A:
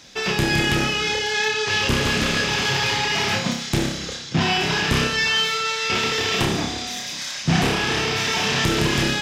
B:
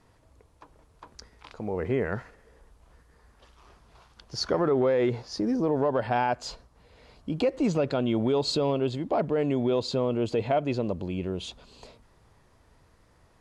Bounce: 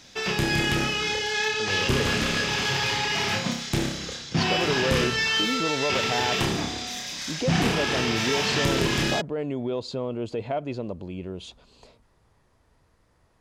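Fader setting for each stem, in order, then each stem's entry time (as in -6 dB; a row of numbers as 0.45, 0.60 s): -4.0, -3.5 dB; 0.00, 0.00 s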